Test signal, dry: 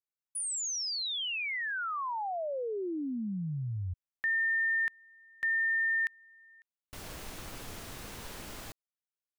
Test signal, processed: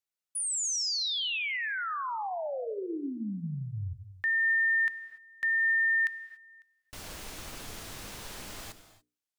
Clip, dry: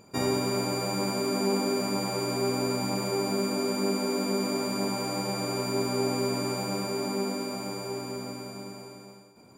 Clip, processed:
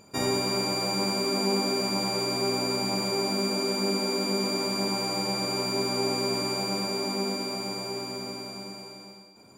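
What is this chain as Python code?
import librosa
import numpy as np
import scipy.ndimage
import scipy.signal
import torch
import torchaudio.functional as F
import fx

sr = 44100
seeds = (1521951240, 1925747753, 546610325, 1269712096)

y = fx.peak_eq(x, sr, hz=5600.0, db=3.5, octaves=2.5)
y = fx.hum_notches(y, sr, base_hz=60, count=8)
y = fx.rev_gated(y, sr, seeds[0], gate_ms=310, shape='flat', drr_db=11.5)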